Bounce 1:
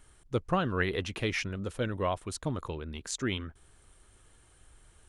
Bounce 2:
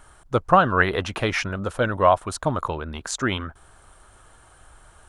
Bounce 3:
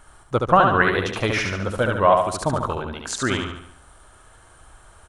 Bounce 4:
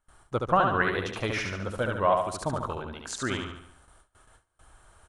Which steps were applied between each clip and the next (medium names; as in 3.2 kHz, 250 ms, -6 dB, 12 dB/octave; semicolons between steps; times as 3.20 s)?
high-order bell 950 Hz +9 dB; trim +6.5 dB
feedback delay 72 ms, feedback 47%, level -4 dB
gate with hold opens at -39 dBFS; trim -7.5 dB